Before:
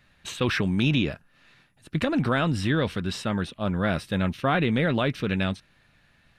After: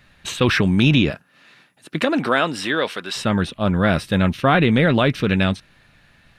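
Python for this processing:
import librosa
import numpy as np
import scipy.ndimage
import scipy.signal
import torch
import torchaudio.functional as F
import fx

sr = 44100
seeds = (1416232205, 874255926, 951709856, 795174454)

y = fx.highpass(x, sr, hz=fx.line((1.1, 140.0), (3.15, 570.0)), slope=12, at=(1.1, 3.15), fade=0.02)
y = F.gain(torch.from_numpy(y), 7.5).numpy()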